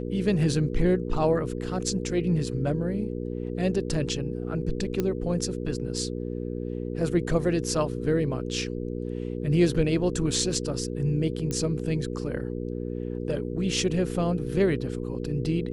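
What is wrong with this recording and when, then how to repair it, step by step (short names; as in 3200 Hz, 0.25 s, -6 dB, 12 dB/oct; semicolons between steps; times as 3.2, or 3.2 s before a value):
hum 60 Hz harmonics 8 -32 dBFS
5 pop -13 dBFS
11.51 pop -17 dBFS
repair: de-click; de-hum 60 Hz, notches 8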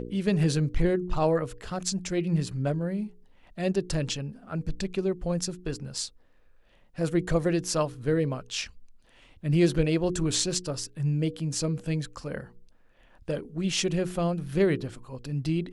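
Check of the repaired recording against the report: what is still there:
none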